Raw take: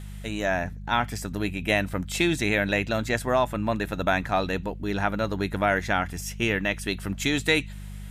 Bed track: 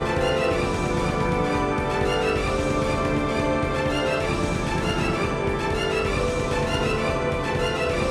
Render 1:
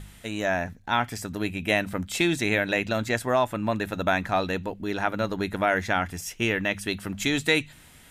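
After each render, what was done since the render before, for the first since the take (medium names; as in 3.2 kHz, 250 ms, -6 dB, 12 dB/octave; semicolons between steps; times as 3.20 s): de-hum 50 Hz, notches 4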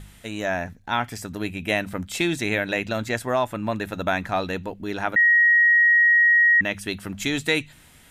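5.16–6.61 s: bleep 1.89 kHz -13 dBFS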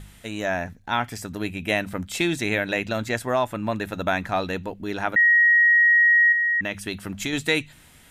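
6.32–7.33 s: compression 2.5:1, threshold -23 dBFS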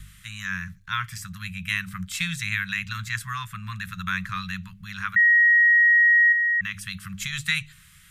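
Chebyshev band-stop 190–1100 Hz, order 5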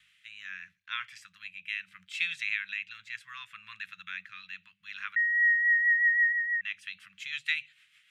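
band-pass filter 2.6 kHz, Q 2.3; rotary cabinet horn 0.75 Hz, later 6.3 Hz, at 4.99 s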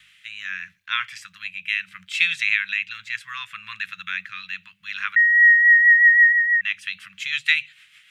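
trim +11 dB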